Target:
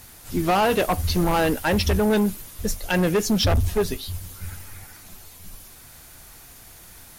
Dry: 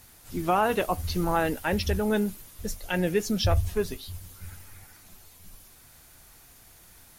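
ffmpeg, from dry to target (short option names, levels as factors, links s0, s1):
-af "volume=15,asoftclip=hard,volume=0.0668,volume=2.37"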